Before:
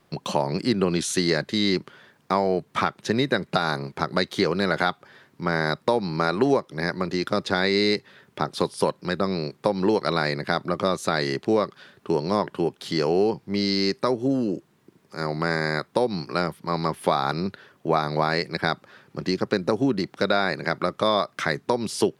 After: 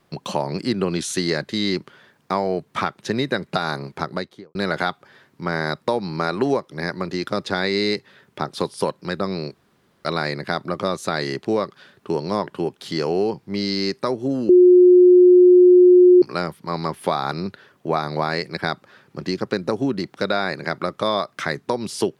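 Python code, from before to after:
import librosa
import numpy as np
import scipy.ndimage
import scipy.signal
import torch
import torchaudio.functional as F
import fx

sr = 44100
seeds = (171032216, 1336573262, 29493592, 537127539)

y = fx.studio_fade_out(x, sr, start_s=3.98, length_s=0.57)
y = fx.edit(y, sr, fx.room_tone_fill(start_s=9.54, length_s=0.51),
    fx.bleep(start_s=14.49, length_s=1.73, hz=360.0, db=-7.0), tone=tone)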